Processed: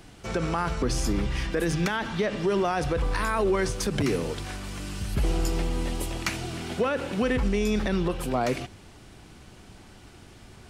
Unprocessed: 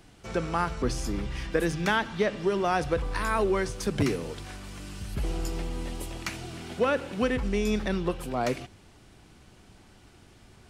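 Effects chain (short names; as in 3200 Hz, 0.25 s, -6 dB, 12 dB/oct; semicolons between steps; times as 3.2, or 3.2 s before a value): limiter -22 dBFS, peak gain reduction 11 dB; gain +5.5 dB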